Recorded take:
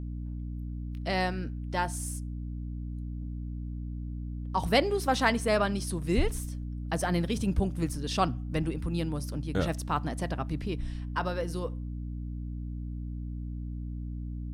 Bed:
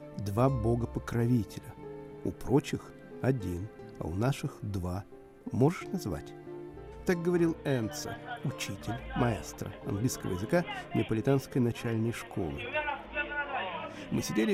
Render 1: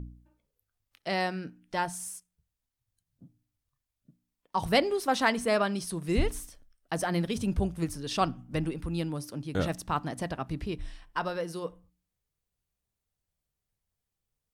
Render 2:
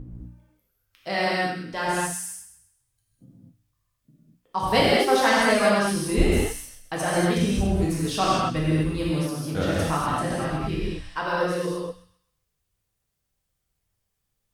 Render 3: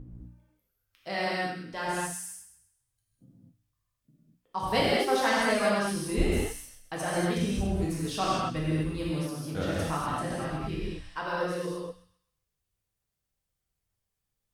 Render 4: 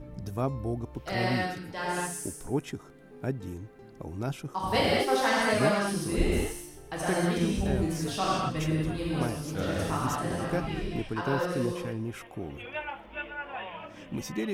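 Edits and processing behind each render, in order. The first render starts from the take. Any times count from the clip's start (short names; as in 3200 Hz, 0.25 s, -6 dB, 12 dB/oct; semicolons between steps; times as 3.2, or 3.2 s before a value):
de-hum 60 Hz, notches 5
thin delay 0.13 s, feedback 33%, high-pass 1800 Hz, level -11 dB; non-linear reverb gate 0.27 s flat, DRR -7 dB
gain -6 dB
add bed -3.5 dB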